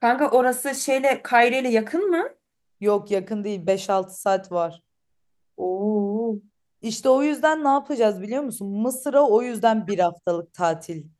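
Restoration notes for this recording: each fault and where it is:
0.76 gap 3 ms

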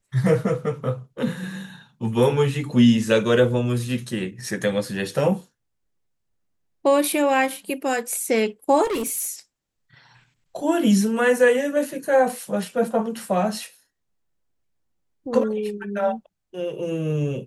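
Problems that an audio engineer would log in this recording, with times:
8.84–9.29 clipped -22 dBFS

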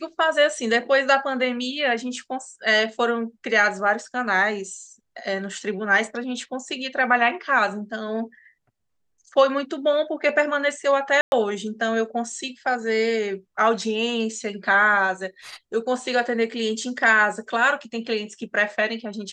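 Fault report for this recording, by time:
11.21–11.32 gap 0.111 s

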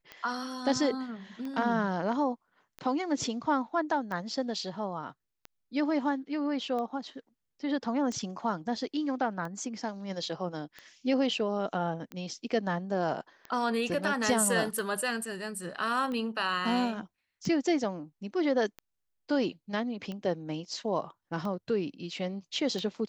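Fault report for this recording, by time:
tick 45 rpm -26 dBFS

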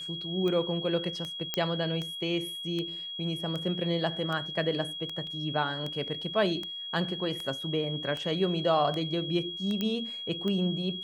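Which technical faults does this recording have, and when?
tick 78 rpm -22 dBFS
tone 3300 Hz -36 dBFS
1.54 pop -12 dBFS
5.27 gap 2.1 ms
9.81 pop -17 dBFS

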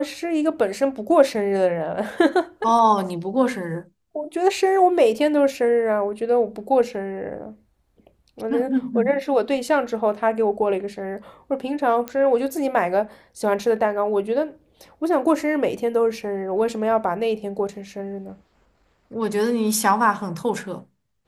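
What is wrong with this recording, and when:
12.08 pop -14 dBFS

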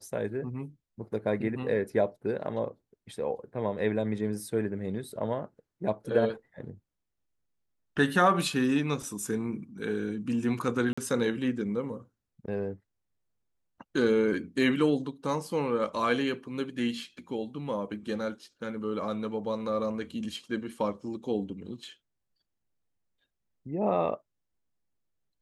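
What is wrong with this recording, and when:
10.93–10.97 gap 45 ms

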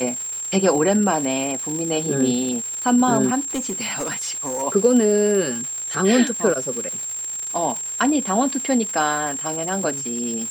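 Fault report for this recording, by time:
crackle 370/s -28 dBFS
tone 7500 Hz -26 dBFS
3.48–4.63 clipped -21 dBFS

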